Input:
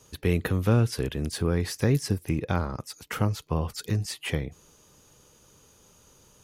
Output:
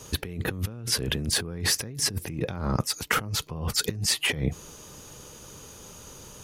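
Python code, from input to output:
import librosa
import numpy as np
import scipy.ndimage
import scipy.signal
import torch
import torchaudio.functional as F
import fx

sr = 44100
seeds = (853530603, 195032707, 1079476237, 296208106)

y = fx.dynamic_eq(x, sr, hz=170.0, q=1.1, threshold_db=-37.0, ratio=4.0, max_db=4)
y = fx.over_compress(y, sr, threshold_db=-34.0, ratio=-1.0)
y = y * librosa.db_to_amplitude(4.0)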